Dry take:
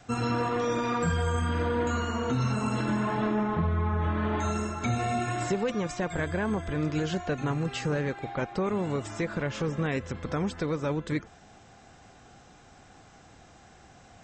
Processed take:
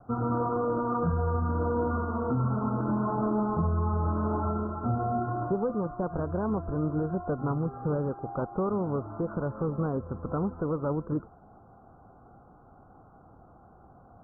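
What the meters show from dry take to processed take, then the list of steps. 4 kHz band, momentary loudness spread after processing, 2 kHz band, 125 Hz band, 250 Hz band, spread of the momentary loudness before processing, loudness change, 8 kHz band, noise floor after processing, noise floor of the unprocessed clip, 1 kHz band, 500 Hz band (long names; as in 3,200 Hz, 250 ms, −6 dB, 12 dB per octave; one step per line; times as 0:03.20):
below −40 dB, 4 LU, −12.0 dB, 0.0 dB, 0.0 dB, 4 LU, −0.5 dB, below −35 dB, −55 dBFS, −54 dBFS, 0.0 dB, 0.0 dB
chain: Butterworth low-pass 1,400 Hz 96 dB per octave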